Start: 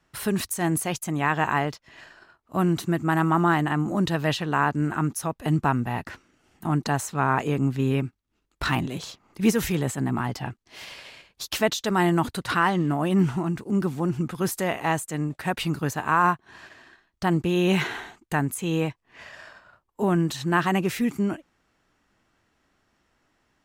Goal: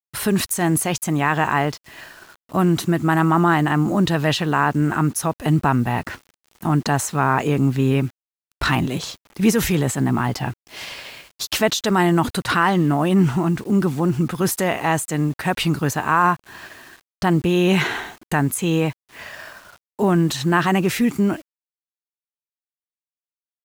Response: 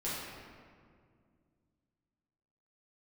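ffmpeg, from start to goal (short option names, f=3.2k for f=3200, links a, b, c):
-filter_complex "[0:a]asplit=2[a][b];[b]alimiter=limit=-20dB:level=0:latency=1:release=36,volume=1dB[c];[a][c]amix=inputs=2:normalize=0,acrusher=bits=7:mix=0:aa=0.000001,volume=1dB"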